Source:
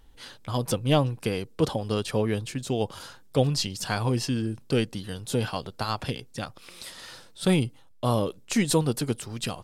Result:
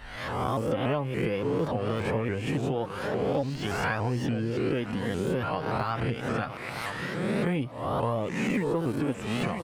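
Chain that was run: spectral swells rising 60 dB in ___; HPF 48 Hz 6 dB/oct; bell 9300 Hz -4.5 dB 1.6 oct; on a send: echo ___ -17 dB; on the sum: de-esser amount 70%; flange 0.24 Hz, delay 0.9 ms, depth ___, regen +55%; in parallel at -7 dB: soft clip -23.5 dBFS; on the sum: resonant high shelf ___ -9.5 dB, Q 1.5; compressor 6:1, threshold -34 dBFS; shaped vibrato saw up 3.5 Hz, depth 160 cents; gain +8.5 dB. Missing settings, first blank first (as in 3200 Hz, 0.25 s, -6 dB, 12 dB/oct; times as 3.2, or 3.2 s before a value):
0.86 s, 0.962 s, 8.1 ms, 2900 Hz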